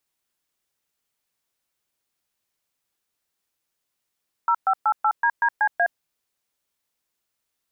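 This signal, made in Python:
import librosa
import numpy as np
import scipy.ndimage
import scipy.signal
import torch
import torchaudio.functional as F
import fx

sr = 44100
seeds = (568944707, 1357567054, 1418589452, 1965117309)

y = fx.dtmf(sr, digits='0588DDCA', tone_ms=67, gap_ms=121, level_db=-19.0)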